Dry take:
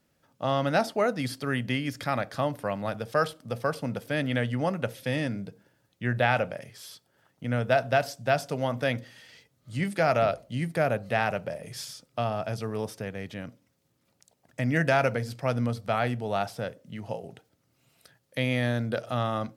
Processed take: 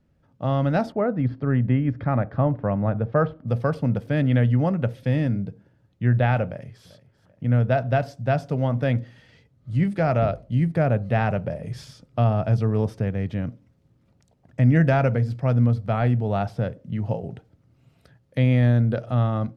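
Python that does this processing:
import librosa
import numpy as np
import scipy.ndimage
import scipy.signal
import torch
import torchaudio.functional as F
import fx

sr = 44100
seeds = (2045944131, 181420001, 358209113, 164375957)

y = fx.lowpass(x, sr, hz=1700.0, slope=12, at=(0.92, 3.47))
y = fx.echo_throw(y, sr, start_s=6.46, length_s=0.4, ms=390, feedback_pct=40, wet_db=-17.0)
y = fx.riaa(y, sr, side='playback')
y = fx.rider(y, sr, range_db=3, speed_s=2.0)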